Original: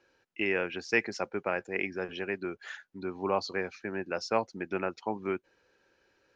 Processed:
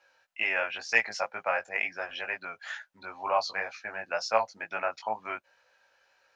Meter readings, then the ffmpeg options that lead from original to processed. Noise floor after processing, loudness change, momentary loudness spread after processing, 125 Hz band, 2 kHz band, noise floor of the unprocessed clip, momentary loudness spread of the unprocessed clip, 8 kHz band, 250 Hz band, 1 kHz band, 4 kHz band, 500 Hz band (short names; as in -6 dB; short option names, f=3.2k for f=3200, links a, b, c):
-69 dBFS, +2.0 dB, 13 LU, -13.5 dB, +4.5 dB, -72 dBFS, 9 LU, n/a, -15.0 dB, +5.0 dB, +4.0 dB, -1.5 dB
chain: -filter_complex "[0:a]lowshelf=f=480:t=q:w=3:g=-8.5,acrossover=split=830[a][b];[b]acontrast=78[c];[a][c]amix=inputs=2:normalize=0,flanger=delay=17.5:depth=2.1:speed=2.1"